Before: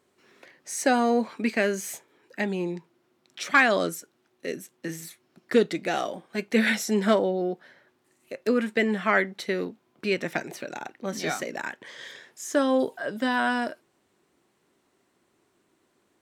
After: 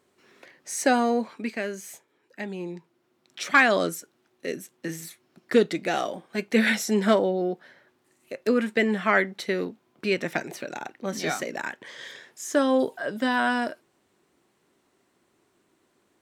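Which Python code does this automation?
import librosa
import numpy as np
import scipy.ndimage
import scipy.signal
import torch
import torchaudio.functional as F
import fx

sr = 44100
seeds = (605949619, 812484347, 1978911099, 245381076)

y = fx.gain(x, sr, db=fx.line((0.92, 1.0), (1.62, -6.5), (2.41, -6.5), (3.41, 1.0)))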